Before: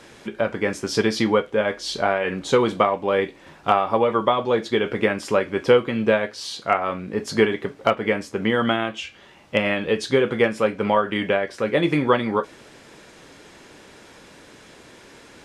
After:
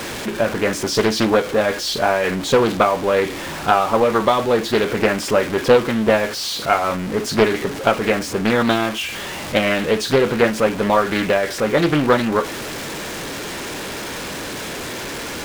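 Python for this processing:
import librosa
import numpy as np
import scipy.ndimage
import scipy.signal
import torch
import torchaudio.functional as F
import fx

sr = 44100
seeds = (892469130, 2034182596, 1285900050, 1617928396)

y = x + 0.5 * 10.0 ** (-25.5 / 20.0) * np.sign(x)
y = fx.doppler_dist(y, sr, depth_ms=0.49)
y = y * 10.0 ** (2.0 / 20.0)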